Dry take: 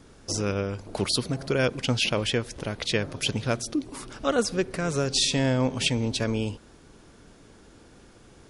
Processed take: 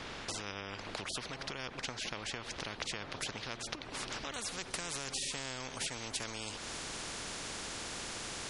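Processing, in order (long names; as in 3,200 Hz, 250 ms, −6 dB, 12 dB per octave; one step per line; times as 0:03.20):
low-pass filter 2,700 Hz 12 dB per octave, from 0:04.34 7,800 Hz
downward compressor, threshold −38 dBFS, peak gain reduction 18 dB
every bin compressed towards the loudest bin 4 to 1
level +5 dB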